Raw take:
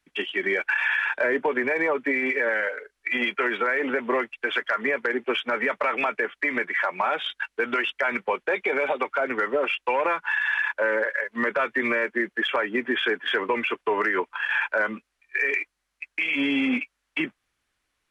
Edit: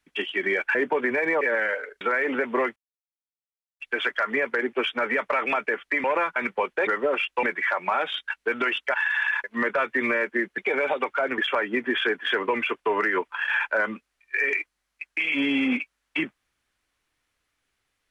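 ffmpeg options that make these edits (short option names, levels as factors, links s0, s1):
-filter_complex "[0:a]asplit=13[s0][s1][s2][s3][s4][s5][s6][s7][s8][s9][s10][s11][s12];[s0]atrim=end=0.752[s13];[s1]atrim=start=1.278:end=1.942[s14];[s2]atrim=start=2.348:end=2.952[s15];[s3]atrim=start=3.558:end=4.31,asetpts=PTS-STARTPTS,afade=t=out:st=0.748:d=0.004:c=hsin,apad=pad_dur=1.04[s16];[s4]atrim=start=4.31:end=6.552,asetpts=PTS-STARTPTS,afade=t=in:d=0.004:c=hsin[s17];[s5]atrim=start=9.928:end=10.252[s18];[s6]atrim=start=8.058:end=8.572[s19];[s7]atrim=start=9.368:end=9.932[s20];[s8]atrim=start=6.548:end=8.062[s21];[s9]atrim=start=10.248:end=10.752[s22];[s10]atrim=start=11.248:end=12.392[s23];[s11]atrim=start=8.568:end=9.372[s24];[s12]atrim=start=12.388[s25];[s13][s14]acrossfade=d=0.004:c1=hsin:c2=hsin[s26];[s26][s15]acrossfade=d=0.004:c1=hsin:c2=hsin[s27];[s16][s17]concat=n=2:v=0:a=1[s28];[s27][s28]acrossfade=d=0.004:c1=hsin:c2=hsin[s29];[s29][s18]acrossfade=d=0.004:c1=hsin:c2=hsin[s30];[s30][s19]acrossfade=d=0.004:c1=hsin:c2=hsin[s31];[s31][s20]acrossfade=d=0.004:c1=hsin:c2=hsin[s32];[s32][s21]acrossfade=d=0.004:c1=hsin:c2=hsin[s33];[s33][s22]acrossfade=d=0.004:c1=hsin:c2=hsin[s34];[s34][s23]acrossfade=d=0.004:c1=hsin:c2=hsin[s35];[s35][s24]acrossfade=d=0.004:c1=hsin:c2=hsin[s36];[s36][s25]acrossfade=d=0.004:c1=hsin:c2=hsin"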